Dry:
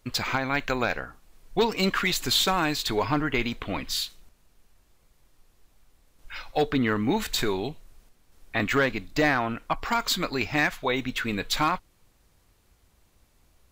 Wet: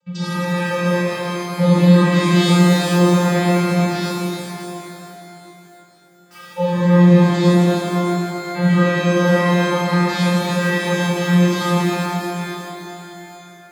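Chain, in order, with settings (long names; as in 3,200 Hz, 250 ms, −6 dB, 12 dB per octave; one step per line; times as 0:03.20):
channel vocoder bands 16, square 176 Hz
0:04.01–0:06.35: wrap-around overflow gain 46.5 dB
reverb with rising layers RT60 3.2 s, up +12 semitones, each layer −8 dB, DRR −11 dB
level +1.5 dB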